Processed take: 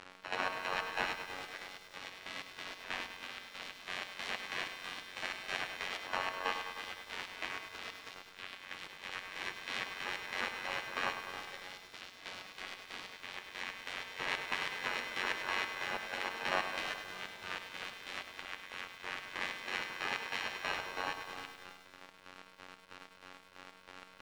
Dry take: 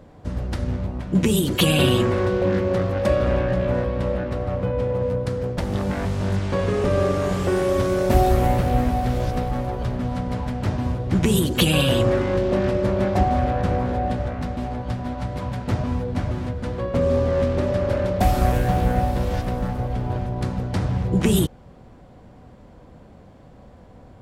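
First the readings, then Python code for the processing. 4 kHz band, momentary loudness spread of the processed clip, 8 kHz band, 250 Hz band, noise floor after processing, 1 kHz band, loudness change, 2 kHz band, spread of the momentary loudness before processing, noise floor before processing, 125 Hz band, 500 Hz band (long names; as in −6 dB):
−10.0 dB, 14 LU, −16.0 dB, −31.5 dB, −58 dBFS, −14.0 dB, −17.0 dB, −4.0 dB, 9 LU, −47 dBFS, −40.0 dB, −25.5 dB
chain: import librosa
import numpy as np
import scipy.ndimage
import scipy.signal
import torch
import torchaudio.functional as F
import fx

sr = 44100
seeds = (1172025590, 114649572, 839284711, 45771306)

y = np.r_[np.sort(x[:len(x) // 32 * 32].reshape(-1, 32), axis=1).ravel(), x[len(x) // 32 * 32:]]
y = fx.over_compress(y, sr, threshold_db=-29.0, ratio=-1.0)
y = fx.low_shelf(y, sr, hz=67.0, db=2.0)
y = fx.robotise(y, sr, hz=92.3)
y = fx.spec_gate(y, sr, threshold_db=-25, keep='weak')
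y = fx.quant_dither(y, sr, seeds[0], bits=8, dither='none')
y = scipy.signal.sosfilt(scipy.signal.butter(2, 2200.0, 'lowpass', fs=sr, output='sos'), y)
y = fx.room_flutter(y, sr, wall_m=9.9, rt60_s=0.29)
y = fx.chopper(y, sr, hz=3.1, depth_pct=65, duty_pct=50)
y = fx.low_shelf(y, sr, hz=170.0, db=-8.5)
y = fx.echo_crushed(y, sr, ms=102, feedback_pct=80, bits=11, wet_db=-9.0)
y = y * librosa.db_to_amplitude(12.0)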